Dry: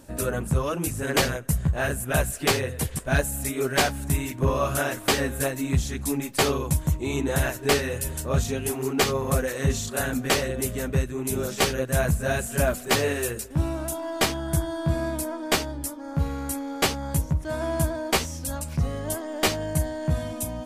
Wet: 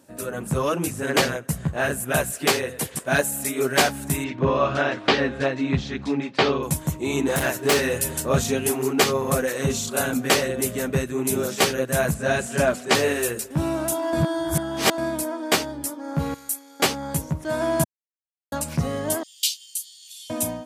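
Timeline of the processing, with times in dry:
0:00.74–0:01.93: high-shelf EQ 8,300 Hz −6 dB
0:02.49–0:03.59: high-pass filter 160 Hz 6 dB per octave
0:04.24–0:06.63: low-pass filter 4,400 Hz 24 dB per octave
0:07.26–0:08.00: hard clipping −21.5 dBFS
0:09.61–0:10.20: notch filter 1,800 Hz, Q 6.4
0:12.14–0:12.95: low-pass filter 7,300 Hz
0:14.13–0:14.98: reverse
0:16.34–0:16.80: first-order pre-emphasis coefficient 0.9
0:17.84–0:18.52: silence
0:19.23–0:20.30: Butterworth high-pass 3,000 Hz 48 dB per octave
whole clip: high-pass filter 150 Hz 12 dB per octave; automatic gain control gain up to 12 dB; level −5 dB

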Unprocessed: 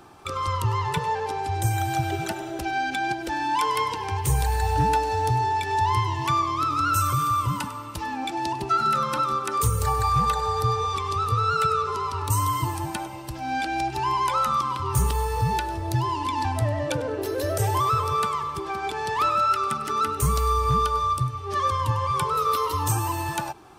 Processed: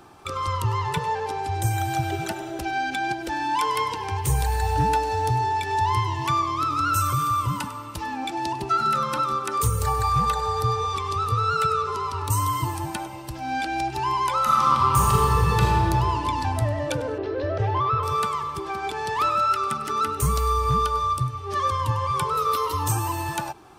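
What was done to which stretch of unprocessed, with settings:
0:14.42–0:15.86: thrown reverb, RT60 2.6 s, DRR −4.5 dB
0:17.18–0:18.03: Bessel low-pass filter 2,700 Hz, order 6

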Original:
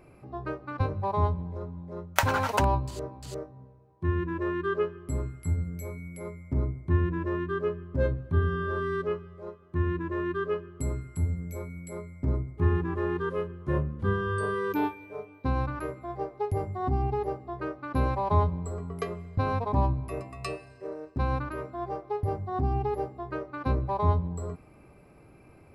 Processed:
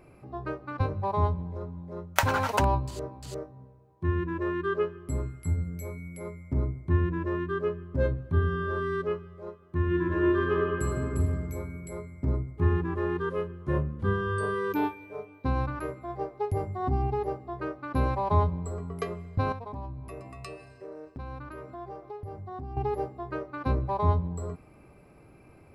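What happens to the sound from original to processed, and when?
0:09.85–0:11.17: thrown reverb, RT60 2.5 s, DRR −2.5 dB
0:19.52–0:22.77: downward compressor 3 to 1, threshold −39 dBFS

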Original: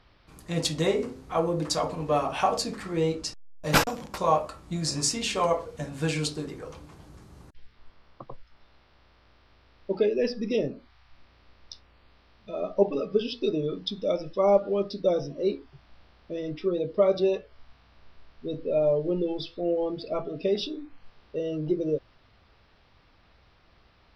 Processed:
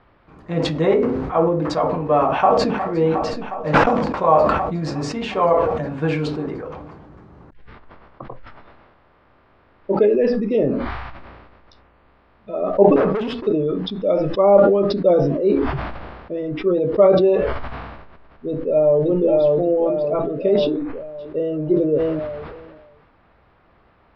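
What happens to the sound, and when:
0:02.33–0:02.82: delay throw 360 ms, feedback 80%, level −10 dB
0:08.26–0:10.02: double-tracking delay 25 ms −7.5 dB
0:12.96–0:13.47: tube saturation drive 36 dB, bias 0.65
0:18.48–0:19.05: delay throw 570 ms, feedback 50%, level −1 dB
0:20.60–0:21.61: delay throw 580 ms, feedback 25%, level −16.5 dB
whole clip: low-pass filter 1,600 Hz 12 dB per octave; low-shelf EQ 110 Hz −9 dB; level that may fall only so fast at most 35 dB per second; level +8 dB

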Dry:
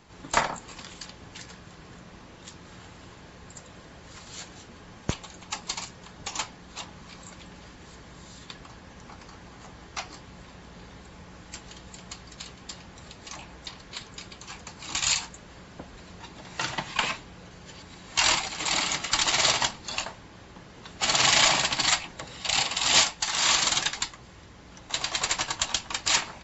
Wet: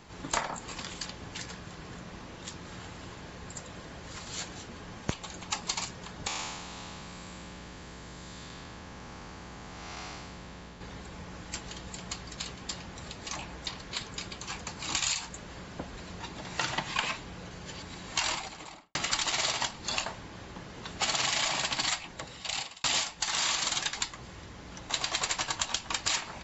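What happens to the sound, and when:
0:06.27–0:10.81: spectrum smeared in time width 321 ms
0:18.01–0:18.95: fade out and dull
0:21.77–0:22.84: fade out
whole clip: downward compressor 6 to 1, threshold −30 dBFS; level +3 dB

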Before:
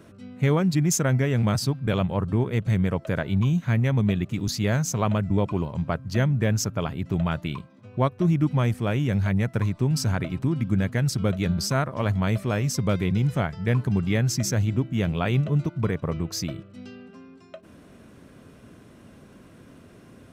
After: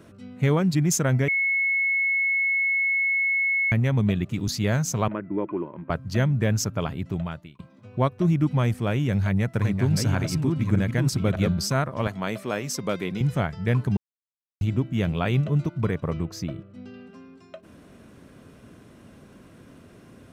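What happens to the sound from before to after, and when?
0:01.28–0:03.72: beep over 2,190 Hz −20 dBFS
0:05.08–0:05.90: loudspeaker in its box 320–2,000 Hz, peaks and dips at 330 Hz +10 dB, 480 Hz −4 dB, 740 Hz −10 dB, 1,300 Hz −3 dB
0:06.94–0:07.59: fade out
0:08.95–0:11.49: delay that plays each chunk backwards 603 ms, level −4.5 dB
0:12.07–0:13.21: high-pass filter 250 Hz
0:13.97–0:14.61: silence
0:16.25–0:16.94: high-shelf EQ 2,300 Hz −10 dB

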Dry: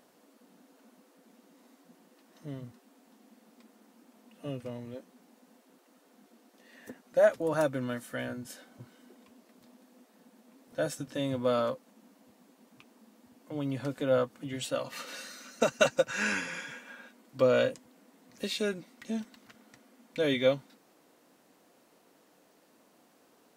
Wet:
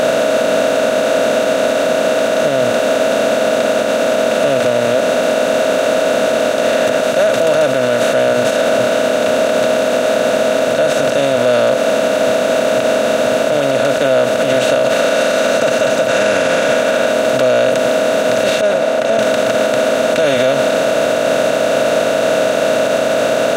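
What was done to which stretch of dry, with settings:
0:07.03–0:07.55: spectral tilt +2 dB per octave
0:18.61–0:19.19: resonant band-pass 720 Hz, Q 3.5
whole clip: compressor on every frequency bin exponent 0.2; parametric band 650 Hz +6 dB 0.43 octaves; brickwall limiter −13 dBFS; level +8.5 dB

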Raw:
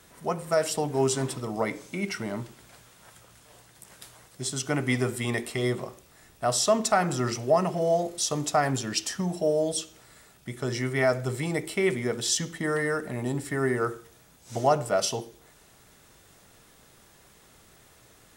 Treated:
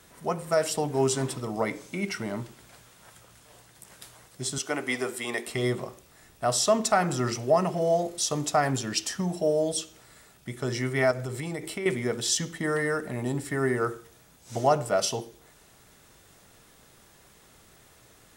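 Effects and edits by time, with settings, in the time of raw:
0:04.58–0:05.47: high-pass filter 350 Hz
0:11.11–0:11.86: downward compressor, threshold −29 dBFS

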